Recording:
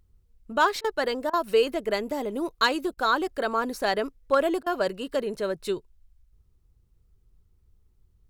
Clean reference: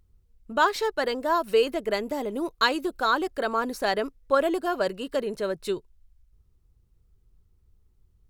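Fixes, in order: clip repair -12 dBFS; interpolate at 0.81/1.30/2.94/4.63 s, 32 ms

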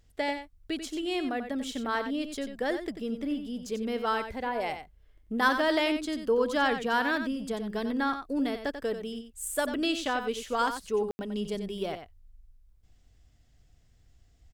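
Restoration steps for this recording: room tone fill 11.11–11.19 s; inverse comb 91 ms -9 dB

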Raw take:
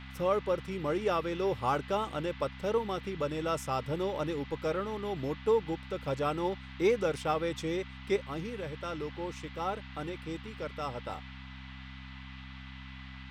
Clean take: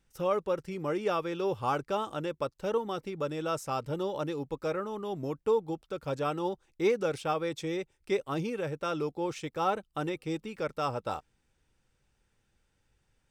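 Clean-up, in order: de-hum 65.4 Hz, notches 4; band-stop 2 kHz, Q 30; noise print and reduce 27 dB; gain correction +5.5 dB, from 8.16 s

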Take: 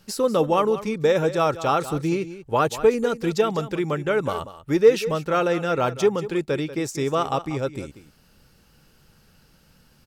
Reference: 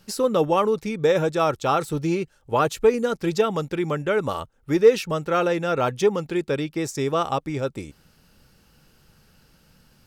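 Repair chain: inverse comb 189 ms -14 dB

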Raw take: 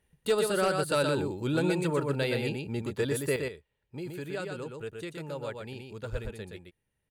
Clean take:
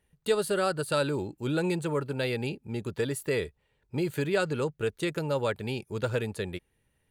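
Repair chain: clip repair -19 dBFS; de-plosive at 6.11 s; inverse comb 121 ms -4.5 dB; trim 0 dB, from 3.36 s +9.5 dB

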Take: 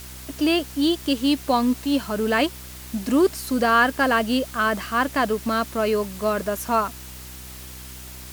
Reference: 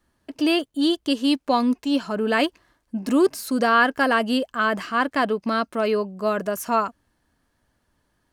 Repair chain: de-hum 63.6 Hz, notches 6; noise reduction 30 dB, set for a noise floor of -39 dBFS

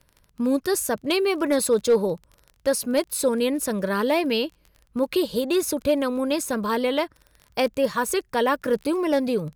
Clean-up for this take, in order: clip repair -12 dBFS; de-click

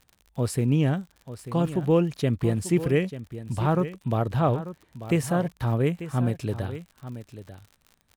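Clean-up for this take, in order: de-click; inverse comb 891 ms -13 dB

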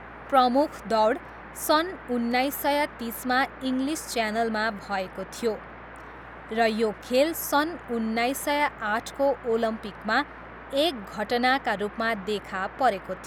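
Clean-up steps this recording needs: de-hum 58 Hz, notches 9; noise print and reduce 28 dB

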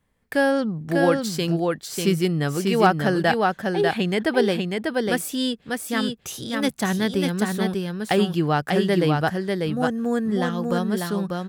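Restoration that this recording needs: clip repair -6 dBFS; inverse comb 594 ms -3.5 dB

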